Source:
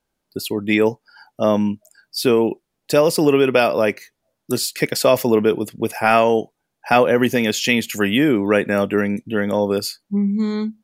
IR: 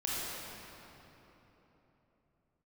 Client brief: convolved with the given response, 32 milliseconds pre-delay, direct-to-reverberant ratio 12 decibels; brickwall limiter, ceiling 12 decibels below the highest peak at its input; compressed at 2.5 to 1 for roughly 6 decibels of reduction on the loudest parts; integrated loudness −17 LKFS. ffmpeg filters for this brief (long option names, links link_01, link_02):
-filter_complex "[0:a]acompressor=threshold=-19dB:ratio=2.5,alimiter=limit=-15.5dB:level=0:latency=1,asplit=2[link_01][link_02];[1:a]atrim=start_sample=2205,adelay=32[link_03];[link_02][link_03]afir=irnorm=-1:irlink=0,volume=-18dB[link_04];[link_01][link_04]amix=inputs=2:normalize=0,volume=9dB"